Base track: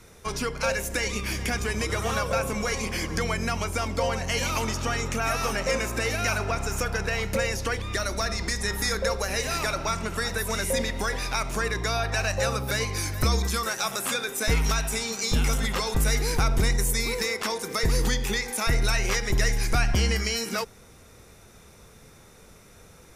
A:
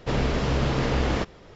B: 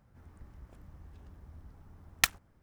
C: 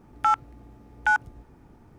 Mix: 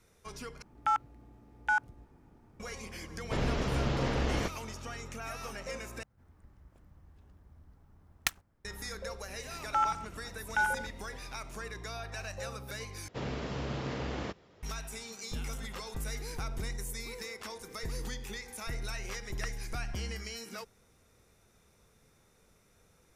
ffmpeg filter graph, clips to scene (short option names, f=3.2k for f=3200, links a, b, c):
-filter_complex "[3:a]asplit=2[a][b];[1:a]asplit=2[c][d];[2:a]asplit=2[e][f];[0:a]volume=-14.5dB[g];[b]aecho=1:1:83|204:0.562|0.15[h];[d]highpass=70[i];[f]lowpass=1.4k[j];[g]asplit=4[k][l][m][n];[k]atrim=end=0.624[o];[a]atrim=end=1.98,asetpts=PTS-STARTPTS,volume=-7dB[p];[l]atrim=start=2.596:end=6.034[q];[e]atrim=end=2.62,asetpts=PTS-STARTPTS,volume=-6dB[r];[m]atrim=start=8.646:end=13.084[s];[i]atrim=end=1.55,asetpts=PTS-STARTPTS,volume=-11.5dB[t];[n]atrim=start=14.626[u];[c]atrim=end=1.55,asetpts=PTS-STARTPTS,volume=-7dB,afade=t=in:d=0.004:c=hsin,afade=t=out:st=1.546:d=0.004:c=hsin,adelay=3240[v];[h]atrim=end=1.98,asetpts=PTS-STARTPTS,volume=-7.5dB,afade=t=in:d=0.004:c=hsin,afade=t=out:st=1.976:d=0.004:c=hsin,adelay=9500[w];[j]atrim=end=2.62,asetpts=PTS-STARTPTS,volume=-9.5dB,afade=t=in:d=0.004:c=hsin,afade=t=out:st=2.616:d=0.004:c=hsin,adelay=17200[x];[o][p]acrossfade=d=0.004:c1=hsin:c2=hsin[y];[y][q]acrossfade=d=0.004:c1=hsin:c2=hsin[z];[z][r]acrossfade=d=0.004:c1=hsin:c2=hsin[aa];[aa][s]acrossfade=d=0.004:c1=hsin:c2=hsin[ab];[ab][t]acrossfade=d=0.004:c1=hsin:c2=hsin[ac];[ac][u]acrossfade=d=0.004:c1=hsin:c2=hsin[ad];[ad][v][w][x]amix=inputs=4:normalize=0"